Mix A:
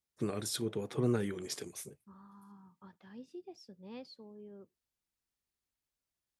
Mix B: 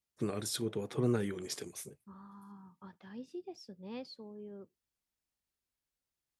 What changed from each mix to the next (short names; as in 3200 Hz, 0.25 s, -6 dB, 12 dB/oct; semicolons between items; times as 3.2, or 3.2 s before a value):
second voice +3.5 dB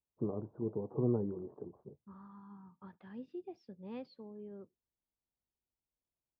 first voice: add elliptic low-pass 1000 Hz, stop band 60 dB; master: add air absorption 360 m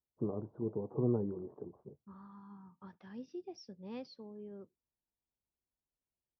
master: add synth low-pass 5700 Hz, resonance Q 14